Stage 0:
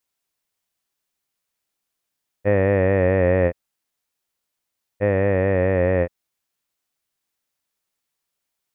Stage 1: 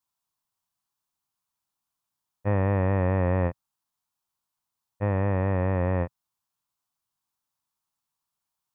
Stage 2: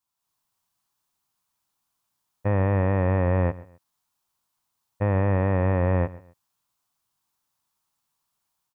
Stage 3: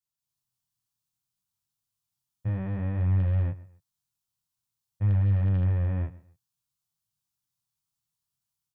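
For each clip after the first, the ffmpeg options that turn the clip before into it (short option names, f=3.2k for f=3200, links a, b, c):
-af "equalizer=f=125:t=o:w=1:g=6,equalizer=f=500:t=o:w=1:g=-9,equalizer=f=1k:t=o:w=1:g=11,equalizer=f=2k:t=o:w=1:g=-8,volume=-5dB"
-af "alimiter=limit=-20dB:level=0:latency=1:release=25,dynaudnorm=f=160:g=3:m=6.5dB,aecho=1:1:131|262:0.112|0.0325"
-af "flanger=delay=19.5:depth=6.7:speed=0.57,aeval=exprs='0.224*(cos(1*acos(clip(val(0)/0.224,-1,1)))-cos(1*PI/2))+0.0631*(cos(2*acos(clip(val(0)/0.224,-1,1)))-cos(2*PI/2))+0.00891*(cos(4*acos(clip(val(0)/0.224,-1,1)))-cos(4*PI/2))':c=same,equalizer=f=125:t=o:w=1:g=9,equalizer=f=250:t=o:w=1:g=-4,equalizer=f=500:t=o:w=1:g=-10,equalizer=f=1k:t=o:w=1:g=-8,equalizer=f=2k:t=o:w=1:g=-5,volume=-3dB"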